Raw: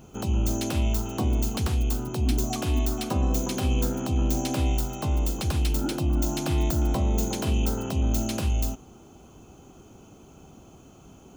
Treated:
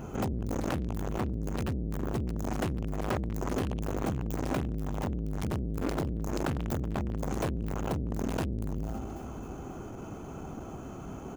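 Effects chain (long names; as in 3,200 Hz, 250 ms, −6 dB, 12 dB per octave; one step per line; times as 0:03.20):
repeating echo 269 ms, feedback 58%, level −24 dB
in parallel at +0.5 dB: brickwall limiter −21.5 dBFS, peak gain reduction 7.5 dB
on the sum: high shelf with overshoot 2,400 Hz −8 dB, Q 1.5
on a send at −10 dB: convolution reverb RT60 0.80 s, pre-delay 115 ms
on the sum: hard clipping −27 dBFS, distortion −6 dB
saturating transformer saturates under 170 Hz
level +3 dB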